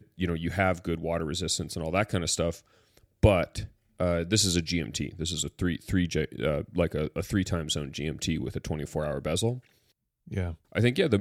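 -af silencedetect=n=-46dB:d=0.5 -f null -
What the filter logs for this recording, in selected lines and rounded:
silence_start: 9.59
silence_end: 10.27 | silence_duration: 0.68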